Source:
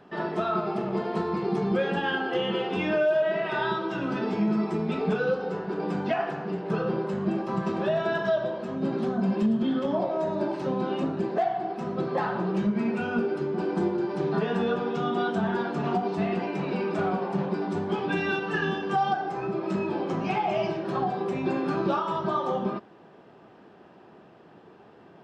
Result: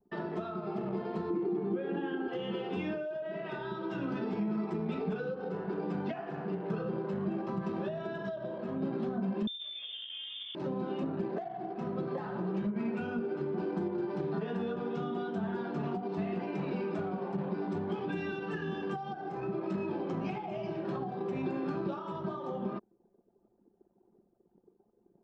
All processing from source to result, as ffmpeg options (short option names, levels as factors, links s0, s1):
-filter_complex "[0:a]asettb=1/sr,asplit=3[s0][s1][s2];[s0]atrim=end=1.304[s3];[s1]atrim=start=1.3:end=2.28,asetpts=PTS-STARTPTS,afade=t=in:d=0.004:c=qsin,afade=t=out:st=0.976:d=0.004:c=qsin,highpass=130,lowpass=3200,equalizer=f=320:t=o:w=0.57:g=14.5[s4];[s2]atrim=start=2.276[s5];[s3][s4]acrossfade=d=0.004:c1=hsin:c2=qsin[s6];[s6][s5]acrossfade=d=0.004:c1=qsin:c2=hsin,asettb=1/sr,asplit=3[s7][s8][s9];[s7]atrim=end=9.474[s10];[s8]atrim=start=9.47:end=10.55,asetpts=PTS-STARTPTS,afade=t=in:d=0.004:c=qsin,afade=t=out:st=1.076:d=0.004:c=qsin,highpass=120,adynamicsmooth=sensitivity=7:basefreq=1000,lowpass=f=3200:t=q:w=0.5098,lowpass=f=3200:t=q:w=0.6013,lowpass=f=3200:t=q:w=0.9,lowpass=f=3200:t=q:w=2.563,afreqshift=-3800[s11];[s9]atrim=start=10.546[s12];[s10][s11]acrossfade=d=0.004:c1=hsin:c2=qsin[s13];[s13][s12]acrossfade=d=0.004:c1=qsin:c2=hsin,acompressor=threshold=0.0447:ratio=6,anlmdn=0.251,acrossover=split=450[s14][s15];[s15]acompressor=threshold=0.0126:ratio=6[s16];[s14][s16]amix=inputs=2:normalize=0,volume=0.75"